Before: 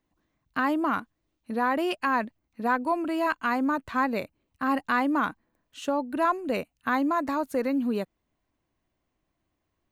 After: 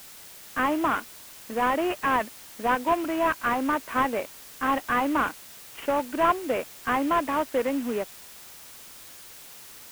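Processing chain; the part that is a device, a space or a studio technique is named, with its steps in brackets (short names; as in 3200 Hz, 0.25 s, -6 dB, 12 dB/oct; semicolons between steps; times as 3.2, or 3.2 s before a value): army field radio (BPF 350–3000 Hz; CVSD 16 kbps; white noise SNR 18 dB); gain +4 dB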